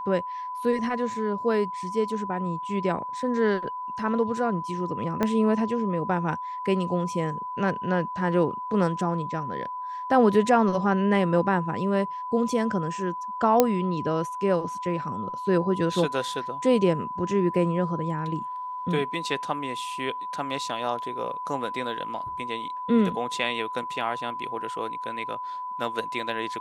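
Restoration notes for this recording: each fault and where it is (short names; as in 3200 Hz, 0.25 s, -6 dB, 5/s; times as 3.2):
tone 1000 Hz -31 dBFS
5.23 pop -11 dBFS
13.6 pop -4 dBFS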